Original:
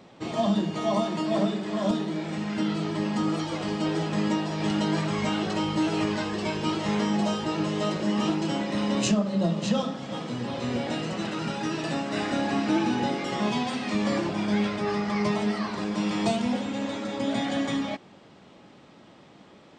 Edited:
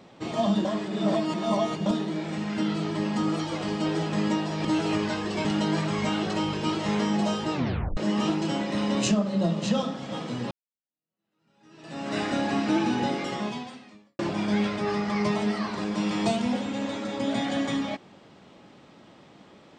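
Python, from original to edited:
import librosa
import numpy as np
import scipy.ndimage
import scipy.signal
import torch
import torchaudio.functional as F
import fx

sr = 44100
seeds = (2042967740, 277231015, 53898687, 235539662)

y = fx.edit(x, sr, fx.reverse_span(start_s=0.65, length_s=1.21),
    fx.move(start_s=5.73, length_s=0.8, to_s=4.65),
    fx.tape_stop(start_s=7.53, length_s=0.44),
    fx.fade_in_span(start_s=10.51, length_s=1.57, curve='exp'),
    fx.fade_out_span(start_s=13.23, length_s=0.96, curve='qua'), tone=tone)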